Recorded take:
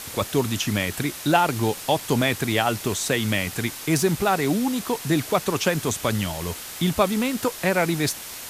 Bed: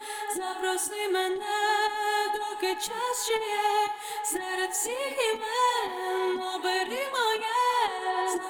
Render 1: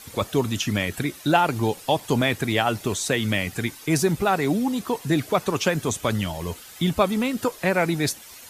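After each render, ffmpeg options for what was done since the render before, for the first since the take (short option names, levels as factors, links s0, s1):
-af "afftdn=nr=11:nf=-37"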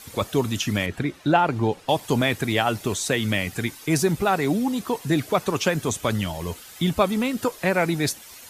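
-filter_complex "[0:a]asettb=1/sr,asplit=3[s0][s1][s2];[s0]atrim=end=0.864[s3];[s1]atrim=start=0.86:end=1.89,asetpts=PTS-STARTPTS,afade=t=in:d=0.004:c=qsin,afade=t=out:st=1.026:d=0.004:c=qsin,aemphasis=mode=reproduction:type=75fm[s4];[s2]atrim=start=1.886[s5];[s3][s4]acrossfade=d=0.004:c1=hsin:c2=qsin[s6];[s6][s5]acrossfade=d=0.004:c1=qsin:c2=hsin"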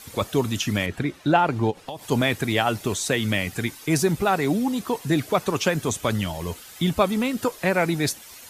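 -filter_complex "[0:a]asplit=3[s0][s1][s2];[s0]afade=t=out:st=1.7:d=0.02[s3];[s1]acompressor=threshold=0.0355:ratio=10:attack=3.2:release=140:knee=1:detection=peak,afade=t=in:st=1.7:d=0.02,afade=t=out:st=2.1:d=0.02[s4];[s2]afade=t=in:st=2.1:d=0.02[s5];[s3][s4][s5]amix=inputs=3:normalize=0"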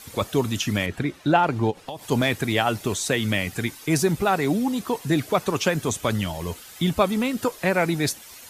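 -filter_complex "[0:a]asettb=1/sr,asplit=3[s0][s1][s2];[s0]atrim=end=1.434[s3];[s1]atrim=start=1.43:end=2.38,asetpts=PTS-STARTPTS,afade=t=in:d=0.004:c=qsin,afade=t=out:st=0.946:d=0.004:c=qsin,volume=3.55,asoftclip=hard,volume=0.282[s4];[s2]atrim=start=2.376[s5];[s3][s4]acrossfade=d=0.004:c1=hsin:c2=qsin[s6];[s6][s5]acrossfade=d=0.004:c1=qsin:c2=hsin"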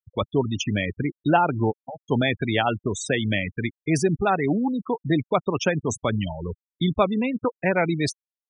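-af "adynamicequalizer=threshold=0.00562:dfrequency=1100:dqfactor=7.4:tfrequency=1100:tqfactor=7.4:attack=5:release=100:ratio=0.375:range=2.5:mode=cutabove:tftype=bell,afftfilt=real='re*gte(hypot(re,im),0.0794)':imag='im*gte(hypot(re,im),0.0794)':win_size=1024:overlap=0.75"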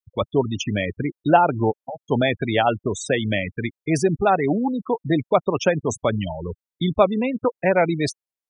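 -af "adynamicequalizer=threshold=0.02:dfrequency=610:dqfactor=1.2:tfrequency=610:tqfactor=1.2:attack=5:release=100:ratio=0.375:range=3:mode=boostabove:tftype=bell"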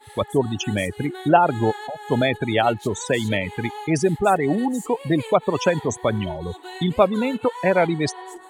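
-filter_complex "[1:a]volume=0.335[s0];[0:a][s0]amix=inputs=2:normalize=0"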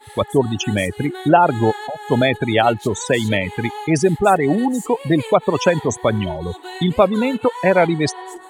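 -af "volume=1.58,alimiter=limit=0.891:level=0:latency=1"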